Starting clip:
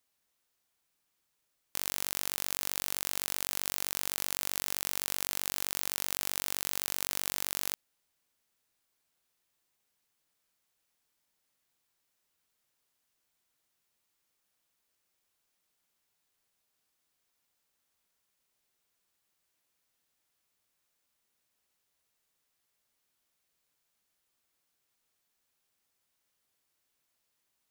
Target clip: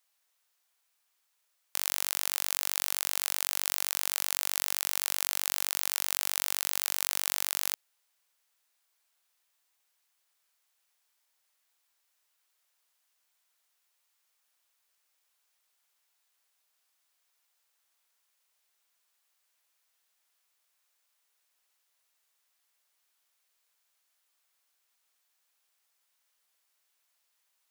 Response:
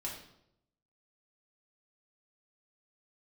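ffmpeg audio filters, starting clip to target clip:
-af "highpass=690,volume=3.5dB"

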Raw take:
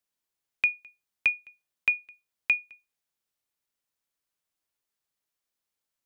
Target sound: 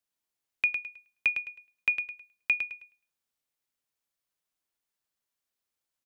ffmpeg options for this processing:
-af "aecho=1:1:106|212|318:0.447|0.116|0.0302,volume=-2dB"

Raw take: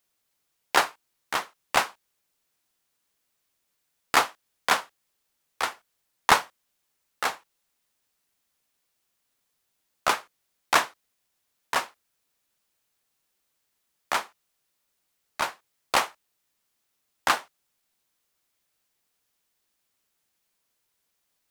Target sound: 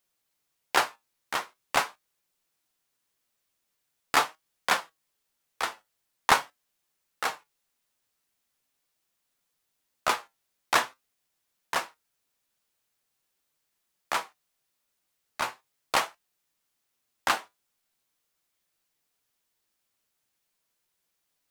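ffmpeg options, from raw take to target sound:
-af "flanger=delay=5.3:depth=4:regen=73:speed=0.43:shape=triangular,volume=2dB"

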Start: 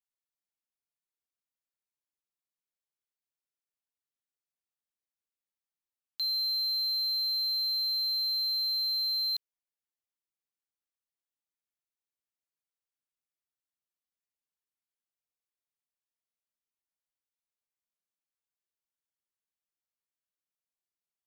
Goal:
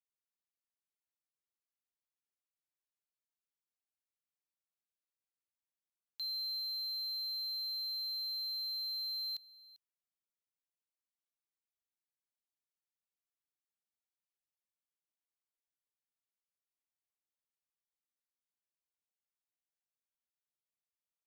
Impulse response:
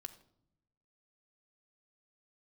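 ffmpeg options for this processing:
-af "aecho=1:1:395:0.0944,volume=-8.5dB"

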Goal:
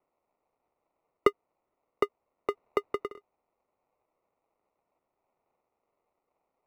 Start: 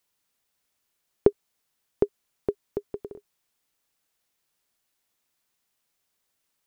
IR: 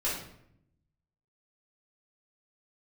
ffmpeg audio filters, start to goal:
-filter_complex "[0:a]acrusher=samples=27:mix=1:aa=0.000001,acrossover=split=390 2200:gain=0.2 1 0.0794[a][b][c];[a][b][c]amix=inputs=3:normalize=0,asplit=3[d][e][f];[d]afade=t=out:st=2.5:d=0.02[g];[e]acontrast=86,afade=t=in:st=2.5:d=0.02,afade=t=out:st=3.07:d=0.02[h];[f]afade=t=in:st=3.07:d=0.02[i];[g][h][i]amix=inputs=3:normalize=0"

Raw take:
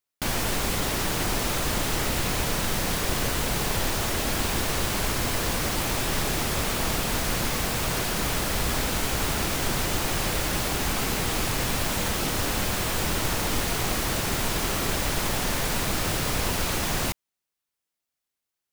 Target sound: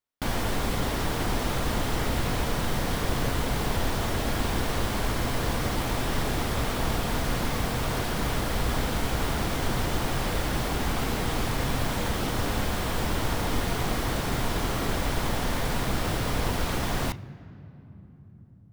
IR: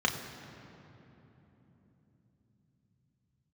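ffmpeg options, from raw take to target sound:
-filter_complex "[0:a]bass=f=250:g=4,treble=f=4k:g=-6,asplit=2[a][b];[1:a]atrim=start_sample=2205,asetrate=41895,aresample=44100[c];[b][c]afir=irnorm=-1:irlink=0,volume=-21dB[d];[a][d]amix=inputs=2:normalize=0,volume=-2dB"

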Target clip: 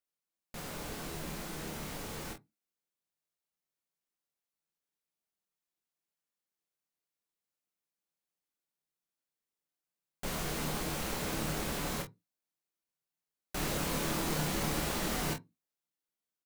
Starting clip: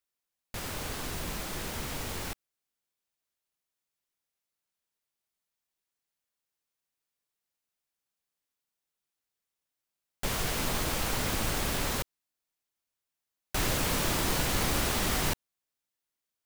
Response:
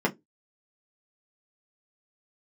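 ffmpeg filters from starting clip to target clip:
-filter_complex "[0:a]aecho=1:1:27|46:0.562|0.224,asplit=2[a][b];[1:a]atrim=start_sample=2205,afade=t=out:st=0.19:d=0.01,atrim=end_sample=8820,asetrate=33516,aresample=44100[c];[b][c]afir=irnorm=-1:irlink=0,volume=-20dB[d];[a][d]amix=inputs=2:normalize=0,volume=-8dB"

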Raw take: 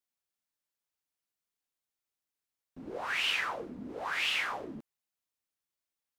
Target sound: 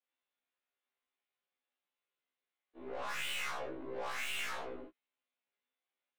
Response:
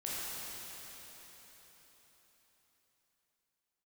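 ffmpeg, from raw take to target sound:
-filter_complex "[0:a]highpass=f=150:t=q:w=0.5412,highpass=f=150:t=q:w=1.307,lowpass=f=3.5k:t=q:w=0.5176,lowpass=f=3.5k:t=q:w=0.7071,lowpass=f=3.5k:t=q:w=1.932,afreqshift=80,aeval=exprs='(tanh(141*val(0)+0.35)-tanh(0.35))/141':c=same[a];[1:a]atrim=start_sample=2205,atrim=end_sample=3969[b];[a][b]afir=irnorm=-1:irlink=0,afftfilt=real='re*1.73*eq(mod(b,3),0)':imag='im*1.73*eq(mod(b,3),0)':win_size=2048:overlap=0.75,volume=8dB"

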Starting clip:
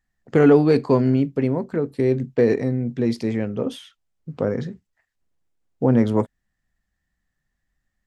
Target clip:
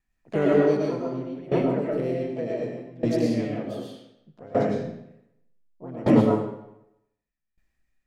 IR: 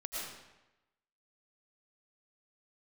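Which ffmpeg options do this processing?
-filter_complex "[0:a]asplit=2[a][b];[b]asetrate=58866,aresample=44100,atempo=0.749154,volume=-5dB[c];[a][c]amix=inputs=2:normalize=0[d];[1:a]atrim=start_sample=2205[e];[d][e]afir=irnorm=-1:irlink=0,aeval=exprs='val(0)*pow(10,-20*if(lt(mod(0.66*n/s,1),2*abs(0.66)/1000),1-mod(0.66*n/s,1)/(2*abs(0.66)/1000),(mod(0.66*n/s,1)-2*abs(0.66)/1000)/(1-2*abs(0.66)/1000))/20)':c=same"

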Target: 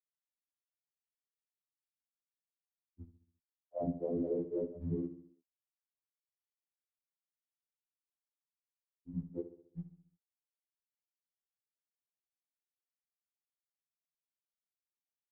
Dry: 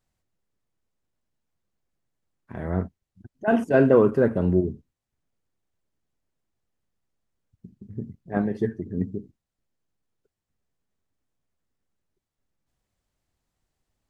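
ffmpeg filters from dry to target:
-af "highpass=f=140:p=1,bandreject=f=50:t=h:w=6,bandreject=f=100:t=h:w=6,bandreject=f=150:t=h:w=6,bandreject=f=200:t=h:w=6,bandreject=f=250:t=h:w=6,afftfilt=real='re*gte(hypot(re,im),0.562)':imag='im*gte(hypot(re,im),0.562)':win_size=1024:overlap=0.75,lowshelf=f=250:g=-4.5,alimiter=level_in=1dB:limit=-24dB:level=0:latency=1:release=43,volume=-1dB,afftfilt=real='hypot(re,im)*cos(2*PI*random(0))':imag='hypot(re,im)*sin(2*PI*random(1))':win_size=512:overlap=0.75,asetrate=40572,aresample=44100,aecho=1:1:68|136|204|272|340:0.251|0.126|0.0628|0.0314|0.0157,afftfilt=real='re*2*eq(mod(b,4),0)':imag='im*2*eq(mod(b,4),0)':win_size=2048:overlap=0.75,volume=3.5dB"

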